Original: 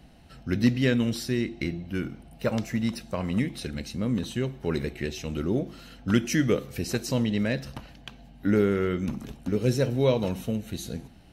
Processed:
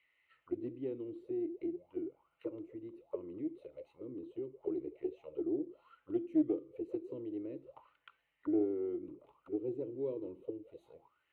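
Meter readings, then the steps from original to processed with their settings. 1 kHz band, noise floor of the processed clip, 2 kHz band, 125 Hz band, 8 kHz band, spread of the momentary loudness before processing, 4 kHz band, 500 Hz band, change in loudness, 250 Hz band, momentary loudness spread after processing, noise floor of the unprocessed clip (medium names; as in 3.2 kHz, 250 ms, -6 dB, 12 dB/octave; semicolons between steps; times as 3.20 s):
-20.5 dB, -80 dBFS, under -30 dB, -28.0 dB, under -40 dB, 13 LU, under -35 dB, -10.5 dB, -12.0 dB, -11.5 dB, 16 LU, -51 dBFS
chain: auto-wah 320–2200 Hz, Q 11, down, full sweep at -25.5 dBFS; static phaser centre 1.1 kHz, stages 8; loudspeaker Doppler distortion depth 0.12 ms; trim +4.5 dB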